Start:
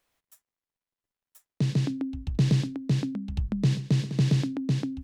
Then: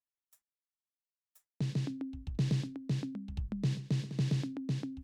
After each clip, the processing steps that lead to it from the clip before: gate with hold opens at -44 dBFS; gain -8.5 dB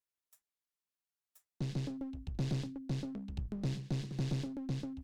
one-sided clip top -41 dBFS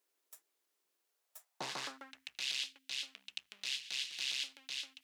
high-pass sweep 360 Hz -> 2800 Hz, 0.99–2.46; gain +10 dB

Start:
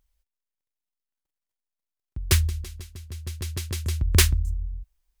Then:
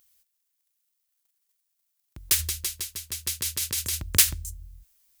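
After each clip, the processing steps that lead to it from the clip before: tilt +4 dB/oct; in parallel at +2 dB: negative-ratio compressor -30 dBFS, ratio -1; on the sum: gain -8.5 dB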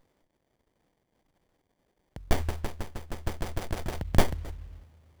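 spring tank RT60 3.4 s, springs 38/57 ms, chirp 60 ms, DRR 18.5 dB; running maximum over 33 samples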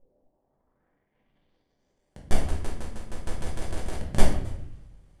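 low-pass sweep 520 Hz -> 9400 Hz, 0.05–2.15; shoebox room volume 140 m³, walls mixed, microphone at 1.1 m; gain -5.5 dB

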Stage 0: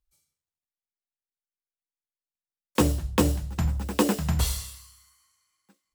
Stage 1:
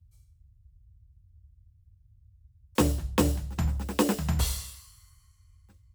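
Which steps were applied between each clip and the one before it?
band noise 32–100 Hz -55 dBFS; gain -2 dB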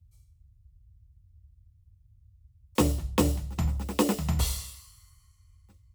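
notch 1600 Hz, Q 6.3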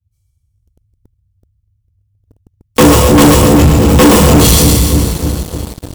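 split-band echo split 500 Hz, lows 0.3 s, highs 0.125 s, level -5 dB; two-slope reverb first 0.49 s, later 4.1 s, from -20 dB, DRR -8.5 dB; sample leveller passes 5; gain -1.5 dB

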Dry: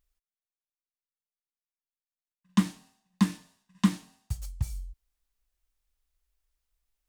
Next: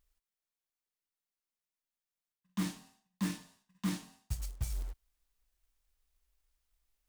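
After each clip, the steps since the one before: reverse; compressor 12:1, threshold -32 dBFS, peak gain reduction 17 dB; reverse; short-mantissa float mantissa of 2-bit; gain +1 dB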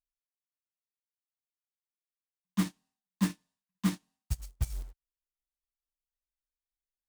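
upward expander 2.5:1, over -49 dBFS; gain +7.5 dB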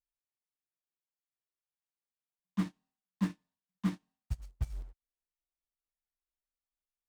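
LPF 2000 Hz 6 dB/oct; gain -3 dB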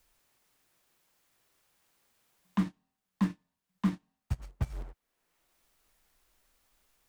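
three-band squash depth 70%; gain +5 dB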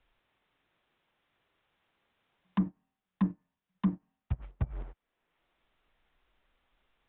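treble ducked by the level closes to 690 Hz, closed at -26.5 dBFS; downsampling 8000 Hz

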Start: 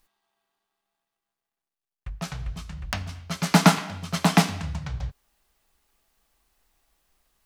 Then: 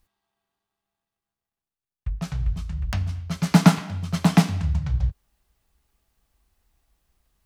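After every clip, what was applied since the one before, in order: bell 73 Hz +13.5 dB 2.9 oct; gain -4 dB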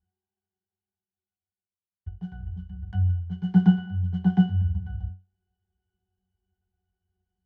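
octave resonator F#, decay 0.26 s; gain +5.5 dB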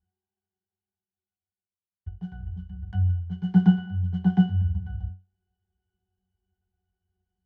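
nothing audible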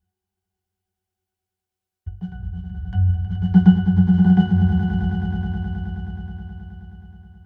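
swelling echo 0.106 s, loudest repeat 5, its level -9.5 dB; gain +5 dB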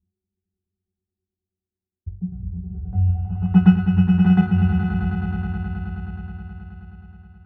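FFT order left unsorted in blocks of 16 samples; low-pass sweep 280 Hz -> 1500 Hz, 2.48–3.68; gain -1 dB

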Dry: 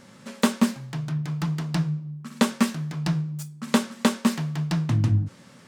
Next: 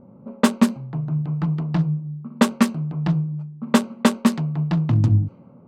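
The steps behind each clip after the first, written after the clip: Wiener smoothing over 25 samples; low-pass opened by the level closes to 890 Hz, open at -16.5 dBFS; gain +4.5 dB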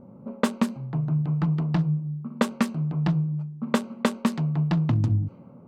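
compressor 6:1, threshold -19 dBFS, peak gain reduction 9.5 dB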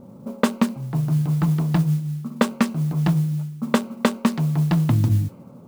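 modulation noise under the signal 27 dB; gain +4 dB

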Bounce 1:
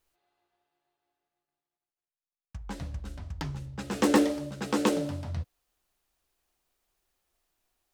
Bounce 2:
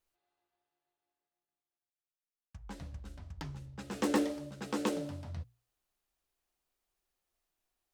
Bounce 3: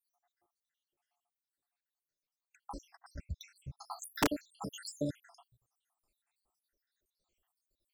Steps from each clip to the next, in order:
notches 60/120 Hz; gain -7.5 dB
random spectral dropouts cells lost 83%; wrapped overs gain 28 dB; gain +7.5 dB

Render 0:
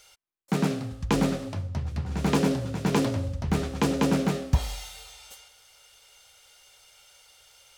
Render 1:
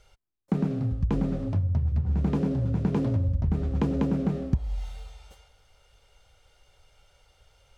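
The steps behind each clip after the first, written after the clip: tilt -4 dB/oct; compressor 16:1, threshold -18 dBFS, peak gain reduction 18 dB; gain -3 dB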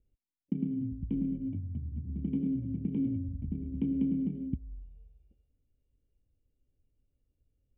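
Wiener smoothing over 41 samples; vocal tract filter i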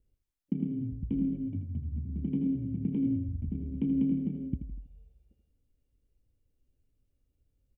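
feedback echo 81 ms, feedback 41%, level -9.5 dB; gain +1 dB

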